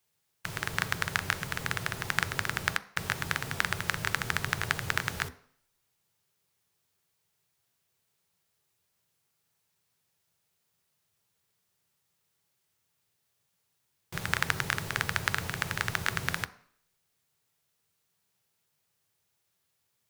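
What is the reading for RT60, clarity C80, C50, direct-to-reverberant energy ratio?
0.55 s, 20.5 dB, 18.0 dB, 11.0 dB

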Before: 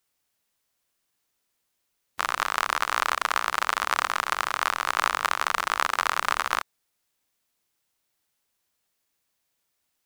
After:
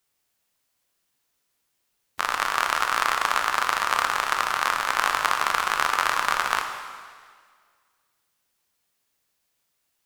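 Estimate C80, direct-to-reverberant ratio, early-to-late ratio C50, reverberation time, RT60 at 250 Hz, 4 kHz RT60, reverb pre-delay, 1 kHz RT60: 7.0 dB, 4.0 dB, 6.0 dB, 1.8 s, 1.8 s, 1.7 s, 6 ms, 1.8 s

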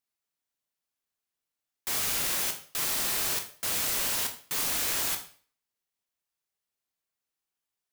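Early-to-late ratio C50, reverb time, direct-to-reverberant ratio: 10.0 dB, 0.45 s, 4.5 dB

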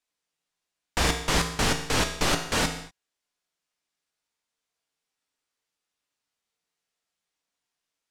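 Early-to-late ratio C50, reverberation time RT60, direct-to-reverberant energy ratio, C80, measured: 8.5 dB, not exponential, 4.5 dB, 11.0 dB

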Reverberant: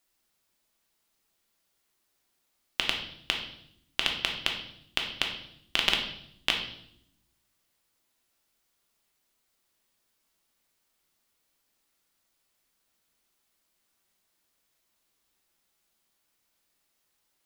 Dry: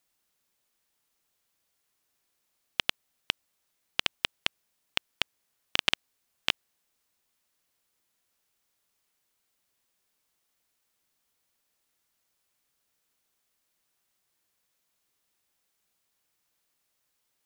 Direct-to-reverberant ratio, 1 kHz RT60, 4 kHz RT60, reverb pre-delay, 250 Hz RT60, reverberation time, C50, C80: 1.5 dB, 0.65 s, 0.70 s, 3 ms, 1.2 s, 0.70 s, 6.5 dB, 9.5 dB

